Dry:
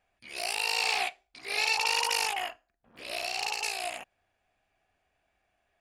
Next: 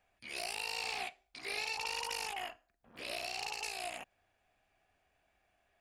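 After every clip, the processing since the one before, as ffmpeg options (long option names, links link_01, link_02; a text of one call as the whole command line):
ffmpeg -i in.wav -filter_complex "[0:a]acrossover=split=300[link_01][link_02];[link_02]acompressor=threshold=-39dB:ratio=3[link_03];[link_01][link_03]amix=inputs=2:normalize=0" out.wav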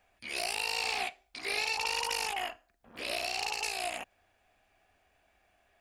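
ffmpeg -i in.wav -af "equalizer=frequency=140:width_type=o:width=0.32:gain=-8,volume=6dB" out.wav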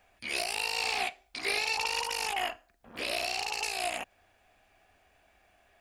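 ffmpeg -i in.wav -af "alimiter=limit=-21.5dB:level=0:latency=1:release=362,volume=4.5dB" out.wav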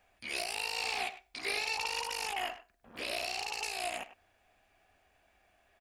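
ffmpeg -i in.wav -filter_complex "[0:a]asplit=2[link_01][link_02];[link_02]adelay=100,highpass=300,lowpass=3400,asoftclip=type=hard:threshold=-26.5dB,volume=-13dB[link_03];[link_01][link_03]amix=inputs=2:normalize=0,volume=-4dB" out.wav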